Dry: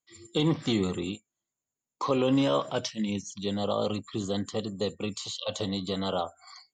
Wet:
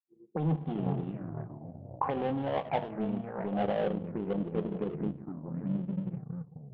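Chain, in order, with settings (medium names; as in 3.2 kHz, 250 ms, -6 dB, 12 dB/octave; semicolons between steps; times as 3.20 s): fade out at the end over 1.45 s; resonant low shelf 120 Hz -11.5 dB, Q 3; on a send at -11.5 dB: reverberation RT60 1.4 s, pre-delay 3 ms; on the sum: peak limiter -17.5 dBFS, peak gain reduction 6 dB; graphic EQ with 31 bands 160 Hz +8 dB, 800 Hz +10 dB, 1.25 kHz -4 dB; in parallel at -1 dB: compression, threshold -37 dBFS, peak gain reduction 20 dB; on the sum: ever faster or slower copies 341 ms, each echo -3 st, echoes 3, each echo -6 dB; low-pass sweep 750 Hz -> 160 Hz, 3.33–6.55 s; power-law waveshaper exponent 1.4; touch-sensitive low-pass 400–3200 Hz up, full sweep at -21.5 dBFS; trim -8.5 dB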